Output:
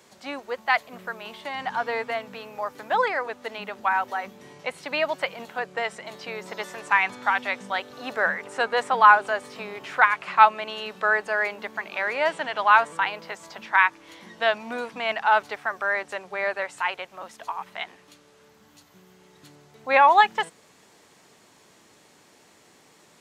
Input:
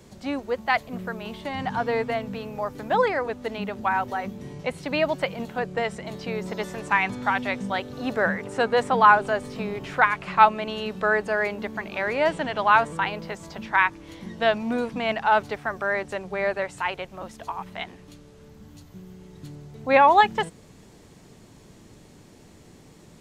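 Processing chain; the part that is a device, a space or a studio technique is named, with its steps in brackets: filter by subtraction (in parallel: LPF 1200 Hz 12 dB/oct + phase invert)

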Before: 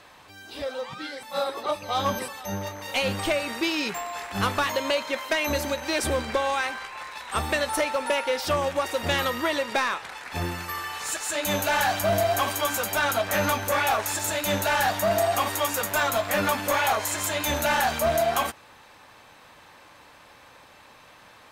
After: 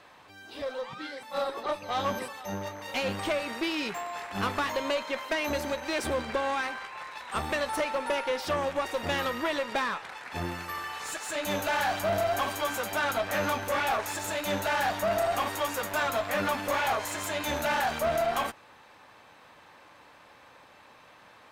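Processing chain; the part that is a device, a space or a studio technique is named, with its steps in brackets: tube preamp driven hard (tube stage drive 21 dB, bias 0.5; low shelf 91 Hz -8 dB; high shelf 4200 Hz -7.5 dB)

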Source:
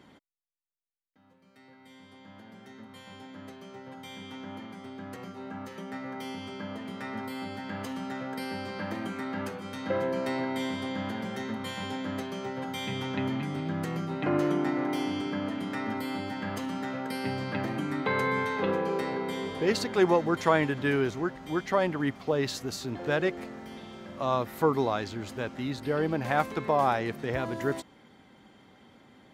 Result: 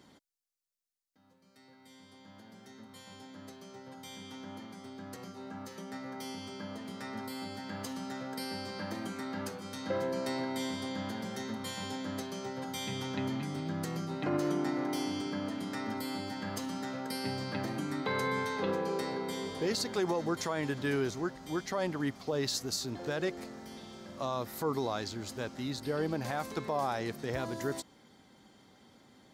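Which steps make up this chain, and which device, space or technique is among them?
over-bright horn tweeter (resonant high shelf 3600 Hz +7 dB, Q 1.5; limiter -18.5 dBFS, peak gain reduction 9 dB); gain -4 dB

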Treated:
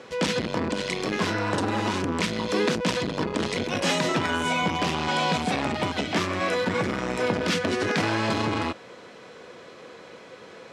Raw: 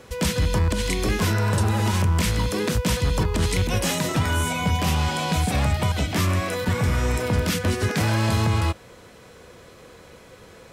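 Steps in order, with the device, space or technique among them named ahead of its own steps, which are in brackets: public-address speaker with an overloaded transformer (core saturation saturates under 250 Hz; BPF 220–5100 Hz); gain +3 dB

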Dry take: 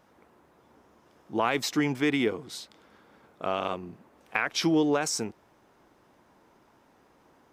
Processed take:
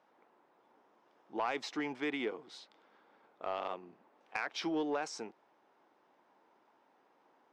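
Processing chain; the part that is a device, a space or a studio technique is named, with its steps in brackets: intercom (BPF 310–4300 Hz; bell 840 Hz +4 dB 0.46 oct; soft clip -15.5 dBFS, distortion -19 dB); gain -8 dB

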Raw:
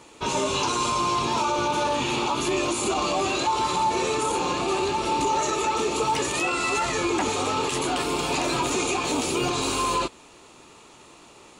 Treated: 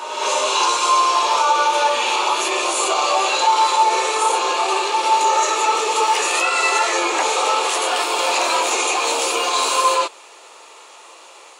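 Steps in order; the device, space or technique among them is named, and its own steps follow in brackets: ghost voice (reverse; reverb RT60 1.4 s, pre-delay 5 ms, DRR 1.5 dB; reverse; HPF 490 Hz 24 dB/oct); gain +6 dB

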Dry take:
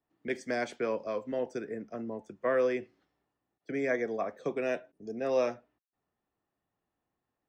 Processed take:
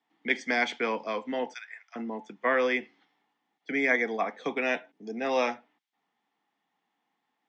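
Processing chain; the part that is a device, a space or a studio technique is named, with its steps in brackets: 1.54–1.96 Bessel high-pass 1500 Hz, order 8; television speaker (speaker cabinet 200–6600 Hz, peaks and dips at 370 Hz -7 dB, 580 Hz -10 dB, 840 Hz +8 dB, 2100 Hz +9 dB, 3300 Hz +9 dB); gain +5.5 dB

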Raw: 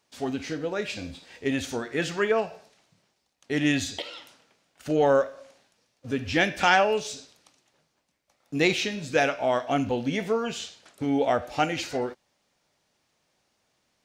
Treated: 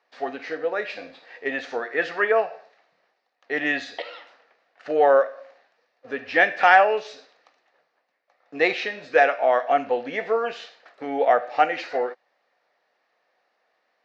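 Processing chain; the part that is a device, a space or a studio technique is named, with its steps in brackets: phone earpiece (speaker cabinet 420–4300 Hz, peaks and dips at 490 Hz +7 dB, 720 Hz +8 dB, 1200 Hz +5 dB, 1800 Hz +9 dB, 3300 Hz -6 dB)

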